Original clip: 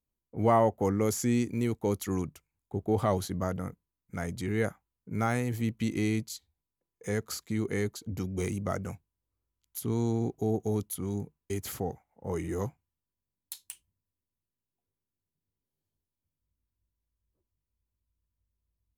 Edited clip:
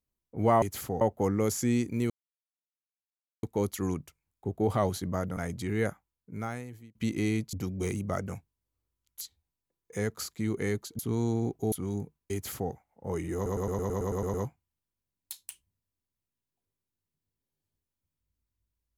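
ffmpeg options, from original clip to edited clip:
-filter_complex "[0:a]asplit=19[s0][s1][s2][s3][s4][s5][s6][s7][s8][s9][s10][s11][s12][s13][s14][s15][s16][s17][s18];[s0]atrim=end=0.622[s19];[s1]atrim=start=11.528:end=11.922[s20];[s2]atrim=start=0.618:end=1.71,asetpts=PTS-STARTPTS,afade=t=out:st=1.088:d=0.004:c=hsin,apad=pad_dur=1.33[s21];[s3]atrim=start=1.71:end=3.652,asetpts=PTS-STARTPTS,afade=t=in:d=0.004:c=hsin[s22];[s4]atrim=start=4.158:end=5.74,asetpts=PTS-STARTPTS,afade=t=out:st=0.502:d=1.08[s23];[s5]atrim=start=5.74:end=6.322,asetpts=PTS-STARTPTS,afade=t=in:d=0.004:c=hsin[s24];[s6]atrim=start=8.098:end=9.782[s25];[s7]atrim=start=6.318:end=8.102[s26];[s8]atrim=start=9.778:end=10.512[s27];[s9]atrim=start=10.918:end=12.662[s28];[s10]atrim=start=12.548:end=12.662[s29];[s11]atrim=start=12.548:end=12.662[s30];[s12]atrim=start=12.548:end=12.662[s31];[s13]atrim=start=12.548:end=12.662[s32];[s14]atrim=start=12.548:end=12.662[s33];[s15]atrim=start=12.548:end=12.662[s34];[s16]atrim=start=12.548:end=12.662[s35];[s17]atrim=start=12.548:end=12.662[s36];[s18]atrim=start=12.548[s37];[s19][s20]acrossfade=d=0.004:c1=hsin:c2=hsin[s38];[s21][s22]concat=n=2:v=0:a=1[s39];[s38][s39]acrossfade=d=0.004:c1=hsin:c2=hsin[s40];[s23][s24]concat=n=2:v=0:a=1[s41];[s40][s41]acrossfade=d=0.004:c1=hsin:c2=hsin[s42];[s42][s25]acrossfade=d=0.004:c1=hsin:c2=hsin[s43];[s43][s26]acrossfade=d=0.004:c1=hsin:c2=hsin[s44];[s44][s27]acrossfade=d=0.004:c1=hsin:c2=hsin[s45];[s45][s28]acrossfade=d=0.004:c1=hsin:c2=hsin[s46];[s46][s29]acrossfade=d=0.004:c1=hsin:c2=hsin[s47];[s47][s30]acrossfade=d=0.004:c1=hsin:c2=hsin[s48];[s48][s31]acrossfade=d=0.004:c1=hsin:c2=hsin[s49];[s49][s32]acrossfade=d=0.004:c1=hsin:c2=hsin[s50];[s50][s33]acrossfade=d=0.004:c1=hsin:c2=hsin[s51];[s51][s34]acrossfade=d=0.004:c1=hsin:c2=hsin[s52];[s52][s35]acrossfade=d=0.004:c1=hsin:c2=hsin[s53];[s53][s36]acrossfade=d=0.004:c1=hsin:c2=hsin[s54];[s54][s37]acrossfade=d=0.004:c1=hsin:c2=hsin"

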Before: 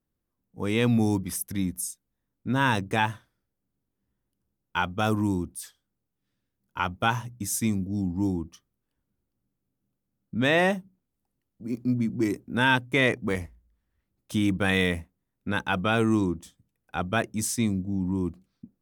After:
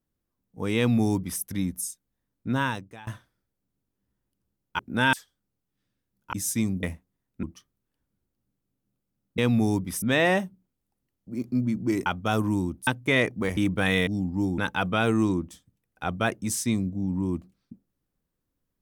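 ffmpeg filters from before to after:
-filter_complex "[0:a]asplit=14[s0][s1][s2][s3][s4][s5][s6][s7][s8][s9][s10][s11][s12][s13];[s0]atrim=end=3.07,asetpts=PTS-STARTPTS,afade=t=out:st=2.54:d=0.53:c=qua:silence=0.0707946[s14];[s1]atrim=start=3.07:end=4.792,asetpts=PTS-STARTPTS,afade=t=in:d=0.004:c=hsin:silence=0.0707946[s15];[s2]atrim=start=12.388:end=12.732[s16];[s3]atrim=start=5.598:end=6.802[s17];[s4]atrim=start=7.388:end=7.892[s18];[s5]atrim=start=14.898:end=15.502[s19];[s6]atrim=start=8.398:end=10.352[s20];[s7]atrim=start=0.768:end=1.412[s21];[s8]atrim=start=10.348:end=12.392[s22];[s9]atrim=start=4.788:end=5.602[s23];[s10]atrim=start=12.728:end=13.432[s24];[s11]atrim=start=14.398:end=14.902[s25];[s12]atrim=start=7.888:end=8.402[s26];[s13]atrim=start=15.498[s27];[s14][s15]concat=n=2:v=0:a=1[s28];[s28][s16]acrossfade=d=0.004:c1=hsin:c2=hsin[s29];[s29][s17]acrossfade=d=0.004:c1=hsin:c2=hsin[s30];[s30][s18]acrossfade=d=0.004:c1=hsin:c2=hsin[s31];[s31][s19]acrossfade=d=0.004:c1=hsin:c2=hsin[s32];[s32][s20]acrossfade=d=0.004:c1=hsin:c2=hsin[s33];[s33][s21]acrossfade=d=0.004:c1=hsin:c2=hsin[s34];[s34][s22]acrossfade=d=0.004:c1=hsin:c2=hsin[s35];[s35][s23]acrossfade=d=0.004:c1=hsin:c2=hsin[s36];[s36][s24]acrossfade=d=0.004:c1=hsin:c2=hsin[s37];[s37][s25]acrossfade=d=0.004:c1=hsin:c2=hsin[s38];[s38][s26]acrossfade=d=0.004:c1=hsin:c2=hsin[s39];[s39][s27]acrossfade=d=0.004:c1=hsin:c2=hsin"

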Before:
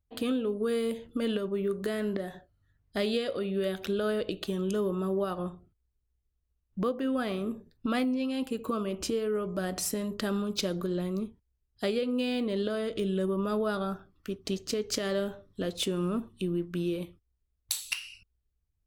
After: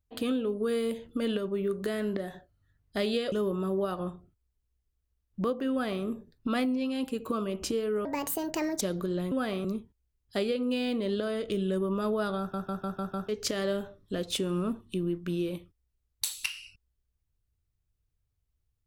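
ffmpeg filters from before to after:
-filter_complex "[0:a]asplit=12[s0][s1][s2][s3][s4][s5][s6][s7][s8][s9][s10][s11];[s0]atrim=end=3.322[s12];[s1]atrim=start=4.708:end=9.444[s13];[s2]atrim=start=9.44:end=10.62,asetpts=PTS-STARTPTS,asetrate=67914,aresample=44100[s14];[s3]atrim=start=10.616:end=11.122[s15];[s4]atrim=start=7.098:end=7.432[s16];[s5]atrim=start=11.118:end=14.012[s17];[s6]atrim=start=13.858:end=14.012[s18];[s7]atrim=start=13.858:end=14.012[s19];[s8]atrim=start=13.858:end=14.012[s20];[s9]atrim=start=13.858:end=14.012[s21];[s10]atrim=start=13.858:end=14.012[s22];[s11]atrim=start=14.758[s23];[s12][s13]acrossfade=d=0.004:c1=hsin:c2=hsin[s24];[s24][s14]acrossfade=d=0.004:c1=hsin:c2=hsin[s25];[s25][s15]acrossfade=d=0.004:c1=hsin:c2=hsin[s26];[s26][s16]acrossfade=d=0.004:c1=hsin:c2=hsin[s27];[s27][s17]acrossfade=d=0.004:c1=hsin:c2=hsin[s28];[s28][s18]acrossfade=d=0.004:c1=hsin:c2=hsin[s29];[s29][s19]acrossfade=d=0.004:c1=hsin:c2=hsin[s30];[s30][s20]acrossfade=d=0.004:c1=hsin:c2=hsin[s31];[s31][s21]acrossfade=d=0.004:c1=hsin:c2=hsin[s32];[s32][s22]acrossfade=d=0.004:c1=hsin:c2=hsin[s33];[s33][s23]acrossfade=d=0.004:c1=hsin:c2=hsin"

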